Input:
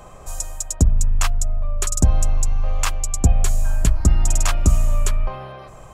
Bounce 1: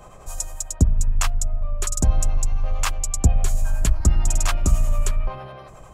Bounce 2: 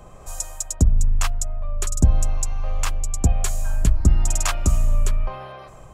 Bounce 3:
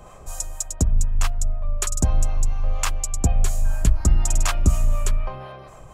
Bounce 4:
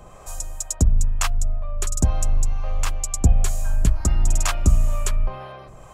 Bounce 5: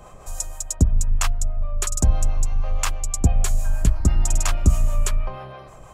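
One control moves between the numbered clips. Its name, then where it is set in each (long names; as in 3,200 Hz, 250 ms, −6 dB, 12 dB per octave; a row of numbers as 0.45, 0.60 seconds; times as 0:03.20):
two-band tremolo in antiphase, speed: 11, 1, 4.1, 2.1, 6.2 Hertz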